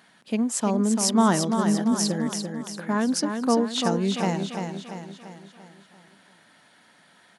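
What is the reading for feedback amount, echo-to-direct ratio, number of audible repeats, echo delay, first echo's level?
50%, -5.0 dB, 5, 342 ms, -6.0 dB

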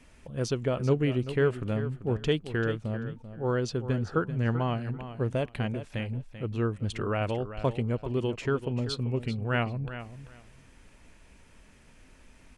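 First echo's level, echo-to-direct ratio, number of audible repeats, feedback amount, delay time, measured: -12.0 dB, -12.0 dB, 2, 18%, 389 ms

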